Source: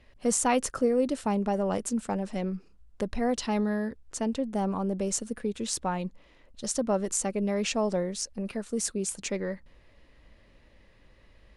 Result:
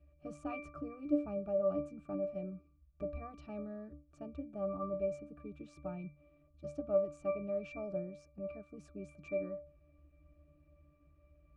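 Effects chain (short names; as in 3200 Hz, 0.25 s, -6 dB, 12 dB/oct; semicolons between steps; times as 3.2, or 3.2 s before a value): octave resonator D, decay 0.35 s; gain +8 dB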